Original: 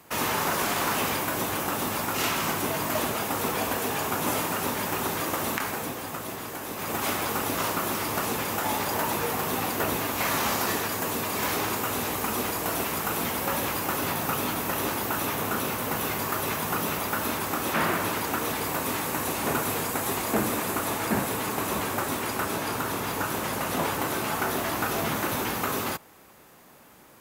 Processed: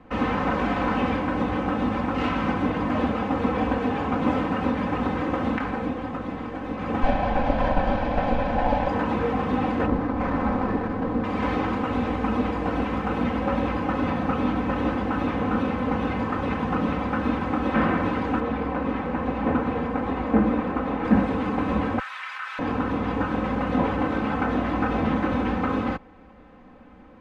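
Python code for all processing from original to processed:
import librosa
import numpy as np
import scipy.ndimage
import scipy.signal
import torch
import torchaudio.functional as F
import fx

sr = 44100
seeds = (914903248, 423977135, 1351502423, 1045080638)

y = fx.chain(x, sr, fx.lower_of_two(delay_ms=1.2),
    fx.peak_eq(hz=590.0, db=11.5, octaves=0.76),
    fx.resample_linear(factor=3), at=(7.03, 8.88))
y = fx.chain(y, sr, fx.median_filter(points=15),
    fx.peak_eq(hz=11000.0, db=5.5, octaves=1.2), at=(9.86, 11.24))
y = fx.chain(y, sr, fx.lowpass(hz=2400.0, slope=6),
    fx.hum_notches(base_hz=50, count=7), at=(18.4, 21.05))
y = fx.chain(y, sr, fx.highpass(hz=1400.0, slope=24),
    fx.env_flatten(amount_pct=100), at=(21.99, 22.59))
y = scipy.signal.sosfilt(scipy.signal.cheby1(2, 1.0, 2600.0, 'lowpass', fs=sr, output='sos'), y)
y = fx.tilt_eq(y, sr, slope=-3.5)
y = y + 0.77 * np.pad(y, (int(3.9 * sr / 1000.0), 0))[:len(y)]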